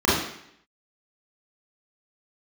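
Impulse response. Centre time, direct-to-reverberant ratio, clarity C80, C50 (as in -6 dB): 62 ms, -10.0 dB, 5.5 dB, 0.5 dB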